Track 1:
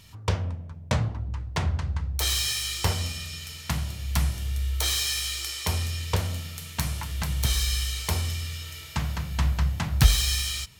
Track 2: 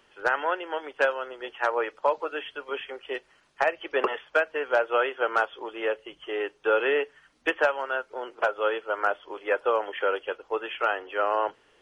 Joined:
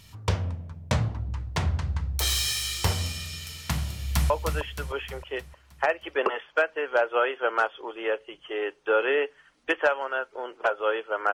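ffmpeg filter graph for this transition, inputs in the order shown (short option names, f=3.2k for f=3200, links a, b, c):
-filter_complex "[0:a]apad=whole_dur=11.33,atrim=end=11.33,atrim=end=4.302[a];[1:a]atrim=start=2.078:end=9.11[b];[a][b]acrossfade=d=0.004:c1=hsin:c2=hsin,asplit=2[c][d];[d]afade=t=in:st=3.96:d=0.01,afade=t=out:st=4.3:d=0.01,aecho=0:1:310|620|930|1240|1550|1860:0.501187|0.250594|0.125297|0.0626484|0.0313242|0.0156621[e];[c][e]amix=inputs=2:normalize=0"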